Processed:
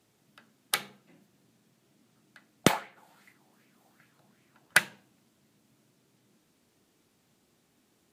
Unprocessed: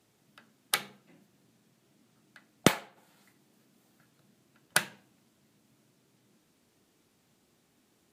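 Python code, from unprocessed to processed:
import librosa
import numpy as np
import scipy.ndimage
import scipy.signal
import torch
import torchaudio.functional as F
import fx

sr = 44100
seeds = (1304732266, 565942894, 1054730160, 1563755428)

y = fx.bell_lfo(x, sr, hz=2.6, low_hz=740.0, high_hz=2300.0, db=11, at=(2.7, 4.79))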